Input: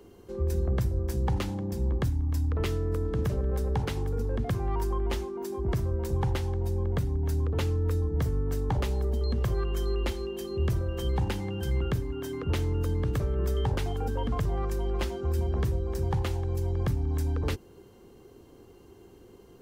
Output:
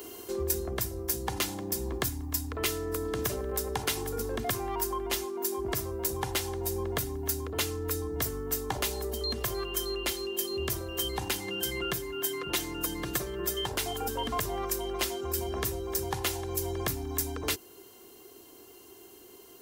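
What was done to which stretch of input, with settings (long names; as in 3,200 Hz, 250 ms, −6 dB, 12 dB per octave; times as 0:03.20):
0:11.47–0:13.69: comb filter 5.7 ms
whole clip: RIAA equalisation recording; comb filter 2.9 ms, depth 37%; speech leveller 0.5 s; level +2 dB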